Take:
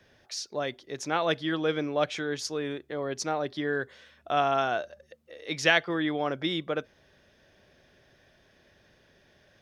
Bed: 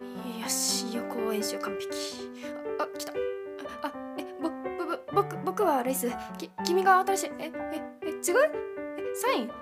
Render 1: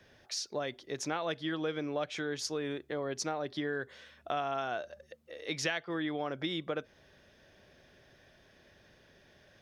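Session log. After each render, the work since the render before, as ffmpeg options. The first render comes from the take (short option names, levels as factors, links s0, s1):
-af "acompressor=threshold=0.0251:ratio=4"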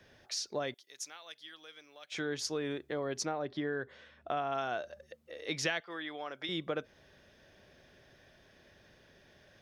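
-filter_complex "[0:a]asettb=1/sr,asplit=3[s0][s1][s2];[s0]atrim=end=0.744[s3];[s1]atrim=start=0.74:end=2.12,asetpts=PTS-STARTPTS,afade=t=in:d=0.004:c=qsin,afade=t=out:st=1.376:d=0.004:c=qsin,aderivative[s4];[s2]atrim=start=2.116[s5];[s3][s4]acrossfade=d=0.004:c1=hsin:c2=qsin[s6];[s6][s5]acrossfade=d=0.004:c1=qsin:c2=hsin,asettb=1/sr,asplit=3[s7][s8][s9];[s7]atrim=end=3.254[s10];[s8]atrim=start=3.25:end=4.52,asetpts=PTS-STARTPTS,afade=t=in:d=0.004:c=qsin,afade=t=out:st=1.266:d=0.004:c=qsin,lowpass=f=2300:p=1[s11];[s9]atrim=start=4.516[s12];[s10][s11]acrossfade=d=0.004:c1=hsin:c2=qsin[s13];[s13][s12]acrossfade=d=0.004:c1=qsin:c2=hsin,asettb=1/sr,asplit=3[s14][s15][s16];[s14]atrim=end=5.804[s17];[s15]atrim=start=5.8:end=6.49,asetpts=PTS-STARTPTS,afade=t=in:d=0.004:c=qsin,afade=t=out:st=0.686:d=0.004:c=qsin,highpass=f=1000:p=1[s18];[s16]atrim=start=6.486[s19];[s17][s18]acrossfade=d=0.004:c1=hsin:c2=qsin[s20];[s20][s19]acrossfade=d=0.004:c1=qsin:c2=hsin"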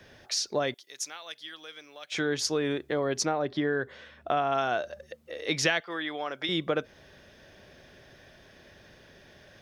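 -af "volume=2.37"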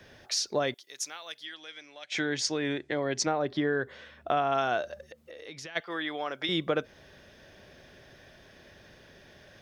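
-filter_complex "[0:a]asettb=1/sr,asplit=3[s0][s1][s2];[s0]atrim=end=1.454[s3];[s1]atrim=start=1.45:end=3.27,asetpts=PTS-STARTPTS,afade=t=in:d=0.004:c=qsin,afade=t=out:st=1.816:d=0.004:c=qsin,highpass=100,equalizer=f=120:t=q:w=4:g=3,equalizer=f=170:t=q:w=4:g=-5,equalizer=f=450:t=q:w=4:g=-5,equalizer=f=1200:t=q:w=4:g=-6,equalizer=f=2000:t=q:w=4:g=5,lowpass=f=8500:w=0.5412,lowpass=f=8500:w=1.3066[s4];[s2]atrim=start=3.266[s5];[s3][s4]acrossfade=d=0.004:c1=hsin:c2=qsin[s6];[s6][s5]acrossfade=d=0.004:c1=qsin:c2=hsin,asplit=3[s7][s8][s9];[s7]afade=t=out:st=5.07:d=0.02[s10];[s8]acompressor=threshold=0.00708:ratio=4:attack=3.2:release=140:knee=1:detection=peak,afade=t=in:st=5.07:d=0.02,afade=t=out:st=5.75:d=0.02[s11];[s9]afade=t=in:st=5.75:d=0.02[s12];[s10][s11][s12]amix=inputs=3:normalize=0"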